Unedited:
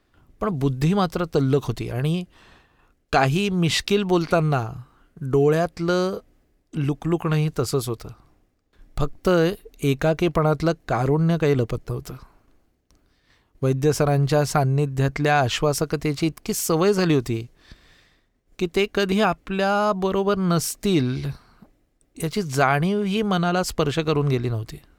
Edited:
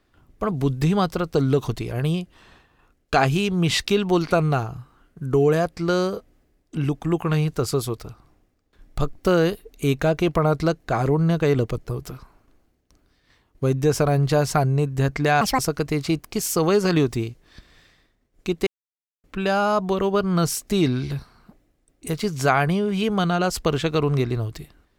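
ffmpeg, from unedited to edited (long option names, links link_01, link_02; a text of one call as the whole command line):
ffmpeg -i in.wav -filter_complex "[0:a]asplit=5[link_01][link_02][link_03][link_04][link_05];[link_01]atrim=end=15.414[link_06];[link_02]atrim=start=15.41:end=15.72,asetpts=PTS-STARTPTS,asetrate=77175,aresample=44100[link_07];[link_03]atrim=start=15.716:end=18.8,asetpts=PTS-STARTPTS,afade=type=out:start_time=3.08:duration=0.004:curve=hsin[link_08];[link_04]atrim=start=18.8:end=19.37,asetpts=PTS-STARTPTS,volume=0[link_09];[link_05]atrim=start=19.37,asetpts=PTS-STARTPTS,afade=type=in:duration=0.004:curve=hsin[link_10];[link_06][link_07]acrossfade=duration=0.004:curve1=hsin:curve2=hsin[link_11];[link_08][link_09][link_10]concat=n=3:v=0:a=1[link_12];[link_11][link_12]acrossfade=duration=0.004:curve1=hsin:curve2=hsin" out.wav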